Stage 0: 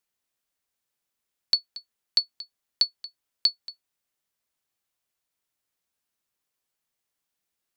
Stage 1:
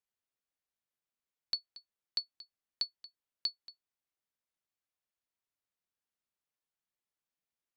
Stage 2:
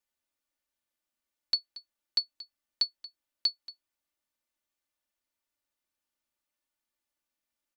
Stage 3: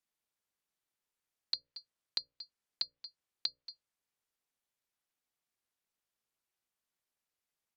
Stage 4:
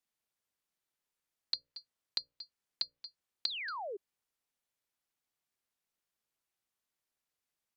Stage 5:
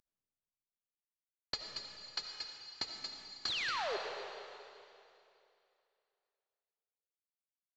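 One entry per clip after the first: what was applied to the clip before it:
treble shelf 4.9 kHz -7.5 dB; trim -9 dB
comb 3.4 ms; trim +3 dB
hum notches 60/120/180/240/300/360 Hz; ring modulator 220 Hz; low-pass that closes with the level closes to 2.2 kHz, closed at -32 dBFS; trim +1 dB
painted sound fall, 3.47–3.97 s, 370–4600 Hz -40 dBFS
CVSD coder 32 kbps; algorithmic reverb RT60 2.7 s, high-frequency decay 1×, pre-delay 35 ms, DRR 2.5 dB; trim +2 dB

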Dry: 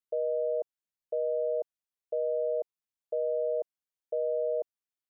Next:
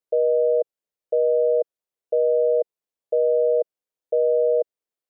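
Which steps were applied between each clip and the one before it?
peaking EQ 490 Hz +12 dB 1.1 oct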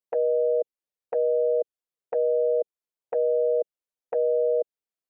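touch-sensitive flanger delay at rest 9.8 ms, full sweep at -18 dBFS; trim -2.5 dB

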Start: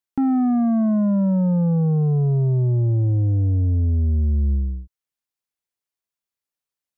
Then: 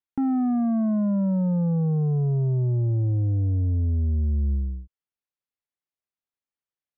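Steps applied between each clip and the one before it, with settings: distance through air 190 m; trim -4 dB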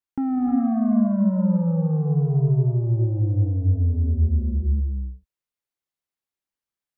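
gated-style reverb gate 390 ms rising, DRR 2 dB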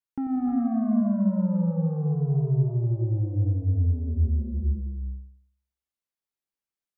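feedback echo behind a low-pass 92 ms, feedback 34%, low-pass 680 Hz, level -7 dB; trim -4.5 dB

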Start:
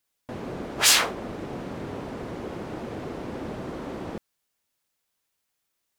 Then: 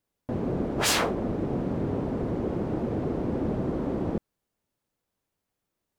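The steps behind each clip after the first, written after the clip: tilt shelf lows +8.5 dB, about 930 Hz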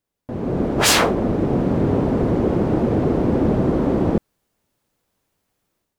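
level rider gain up to 10.5 dB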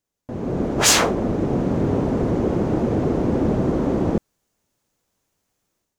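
peaking EQ 6.5 kHz +7 dB 0.59 oct; trim -2 dB

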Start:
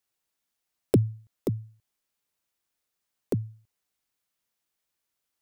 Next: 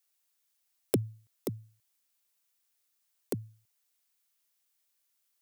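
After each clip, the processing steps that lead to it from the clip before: tilt EQ +2.5 dB/octave; trim -2.5 dB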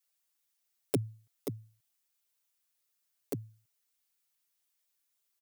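comb 7.1 ms, depth 94%; trim -5.5 dB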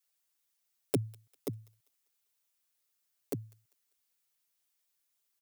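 feedback echo behind a high-pass 198 ms, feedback 40%, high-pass 1.4 kHz, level -22 dB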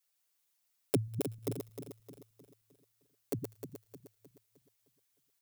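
backward echo that repeats 154 ms, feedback 65%, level -5.5 dB

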